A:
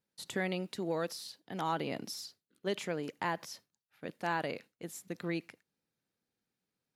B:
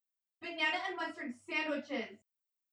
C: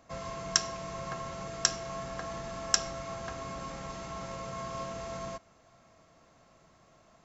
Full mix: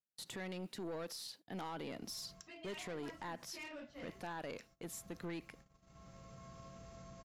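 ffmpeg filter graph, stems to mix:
ffmpeg -i stem1.wav -i stem2.wav -i stem3.wav -filter_complex "[0:a]volume=0.5dB,asplit=2[link_01][link_02];[1:a]asoftclip=type=tanh:threshold=-33.5dB,adelay=2050,volume=-10dB[link_03];[2:a]bass=frequency=250:gain=9,treble=frequency=4000:gain=3,bandreject=frequency=910:width=7.9,acompressor=threshold=-38dB:ratio=3,adelay=1850,volume=-13.5dB[link_04];[link_02]apad=whole_len=400936[link_05];[link_04][link_05]sidechaincompress=threshold=-40dB:ratio=4:attack=8.6:release=1270[link_06];[link_01][link_06]amix=inputs=2:normalize=0,agate=range=-19dB:threshold=-58dB:ratio=16:detection=peak,alimiter=level_in=1dB:limit=-24dB:level=0:latency=1:release=302,volume=-1dB,volume=0dB[link_07];[link_03][link_07]amix=inputs=2:normalize=0,aeval=exprs='(tanh(44.7*val(0)+0.15)-tanh(0.15))/44.7':channel_layout=same,alimiter=level_in=14dB:limit=-24dB:level=0:latency=1:release=45,volume=-14dB" out.wav

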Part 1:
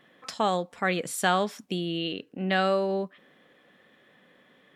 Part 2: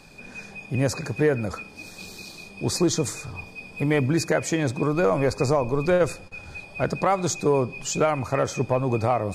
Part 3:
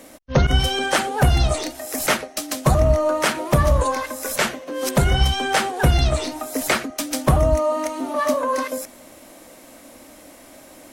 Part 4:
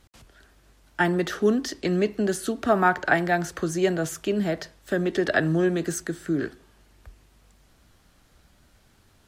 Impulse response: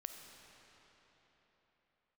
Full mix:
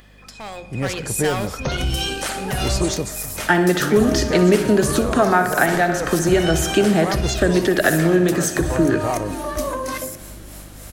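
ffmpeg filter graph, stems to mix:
-filter_complex "[0:a]bandreject=frequency=60:width_type=h:width=6,bandreject=frequency=120:width_type=h:width=6,bandreject=frequency=180:width_type=h:width=6,acompressor=mode=upward:threshold=-35dB:ratio=2.5,asoftclip=type=hard:threshold=-22.5dB,volume=-9.5dB,asplit=2[link_01][link_02];[link_02]volume=-15dB[link_03];[1:a]volume=-8.5dB[link_04];[2:a]acrossover=split=420[link_05][link_06];[link_05]aeval=exprs='val(0)*(1-0.7/2+0.7/2*cos(2*PI*3.4*n/s))':channel_layout=same[link_07];[link_06]aeval=exprs='val(0)*(1-0.7/2-0.7/2*cos(2*PI*3.4*n/s))':channel_layout=same[link_08];[link_07][link_08]amix=inputs=2:normalize=0,adelay=1300,volume=-10dB,asplit=2[link_09][link_10];[link_10]volume=-14dB[link_11];[3:a]adelay=2500,volume=2dB,asplit=3[link_12][link_13][link_14];[link_13]volume=-6dB[link_15];[link_14]volume=-14.5dB[link_16];[link_01][link_09]amix=inputs=2:normalize=0,highshelf=frequency=4200:gain=10.5,alimiter=limit=-23.5dB:level=0:latency=1:release=155,volume=0dB[link_17];[link_04][link_12]amix=inputs=2:normalize=0,aeval=exprs='val(0)+0.00355*(sin(2*PI*50*n/s)+sin(2*PI*2*50*n/s)/2+sin(2*PI*3*50*n/s)/3+sin(2*PI*4*50*n/s)/4+sin(2*PI*5*50*n/s)/5)':channel_layout=same,acompressor=threshold=-25dB:ratio=6,volume=0dB[link_18];[4:a]atrim=start_sample=2205[link_19];[link_15][link_19]afir=irnorm=-1:irlink=0[link_20];[link_03][link_11][link_16]amix=inputs=3:normalize=0,aecho=0:1:61|122|183|244|305|366|427|488|549|610:1|0.6|0.36|0.216|0.13|0.0778|0.0467|0.028|0.0168|0.0101[link_21];[link_17][link_18][link_20][link_21]amix=inputs=4:normalize=0,dynaudnorm=framelen=300:gausssize=5:maxgain=10dB"

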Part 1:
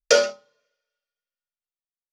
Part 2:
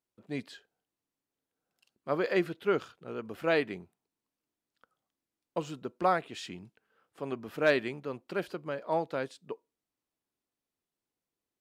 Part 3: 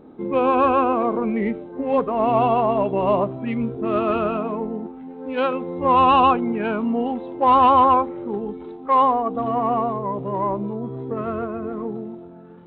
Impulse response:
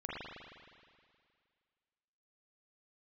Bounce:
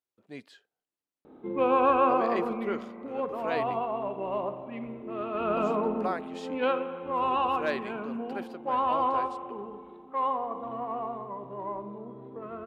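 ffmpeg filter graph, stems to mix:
-filter_complex "[1:a]volume=-5dB[link_01];[2:a]adelay=1250,volume=4.5dB,afade=type=out:start_time=2.07:duration=0.64:silence=0.446684,afade=type=in:start_time=5.33:duration=0.35:silence=0.281838,afade=type=out:start_time=6.49:duration=0.37:silence=0.266073,asplit=2[link_02][link_03];[link_03]volume=-9dB[link_04];[3:a]atrim=start_sample=2205[link_05];[link_04][link_05]afir=irnorm=-1:irlink=0[link_06];[link_01][link_02][link_06]amix=inputs=3:normalize=0,bass=frequency=250:gain=-6,treble=frequency=4000:gain=-2"

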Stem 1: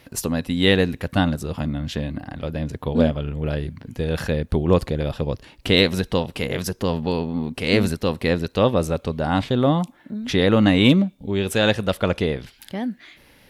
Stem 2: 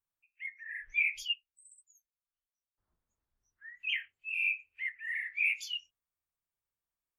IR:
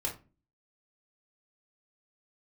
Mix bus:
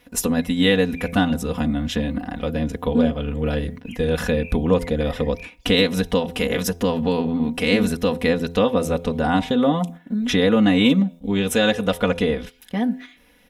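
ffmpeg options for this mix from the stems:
-filter_complex "[0:a]bandreject=frequency=4500:width=6,aecho=1:1:4.1:0.82,acompressor=threshold=-20dB:ratio=2,volume=2.5dB[link_01];[1:a]equalizer=frequency=11000:width=0.46:gain=-13.5,volume=-8dB[link_02];[link_01][link_02]amix=inputs=2:normalize=0,bandreject=frequency=85.48:width_type=h:width=4,bandreject=frequency=170.96:width_type=h:width=4,bandreject=frequency=256.44:width_type=h:width=4,bandreject=frequency=341.92:width_type=h:width=4,bandreject=frequency=427.4:width_type=h:width=4,bandreject=frequency=512.88:width_type=h:width=4,bandreject=frequency=598.36:width_type=h:width=4,bandreject=frequency=683.84:width_type=h:width=4,bandreject=frequency=769.32:width_type=h:width=4,bandreject=frequency=854.8:width_type=h:width=4,bandreject=frequency=940.28:width_type=h:width=4,agate=range=-8dB:threshold=-34dB:ratio=16:detection=peak"

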